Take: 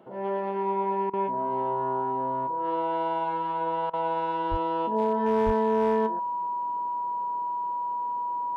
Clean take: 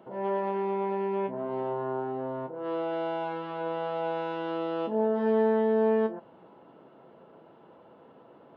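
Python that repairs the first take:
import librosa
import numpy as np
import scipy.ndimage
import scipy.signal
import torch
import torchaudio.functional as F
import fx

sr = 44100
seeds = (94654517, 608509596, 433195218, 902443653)

y = fx.fix_declip(x, sr, threshold_db=-17.0)
y = fx.notch(y, sr, hz=970.0, q=30.0)
y = fx.highpass(y, sr, hz=140.0, slope=24, at=(4.5, 4.62), fade=0.02)
y = fx.highpass(y, sr, hz=140.0, slope=24, at=(5.45, 5.57), fade=0.02)
y = fx.fix_interpolate(y, sr, at_s=(1.1, 3.9), length_ms=33.0)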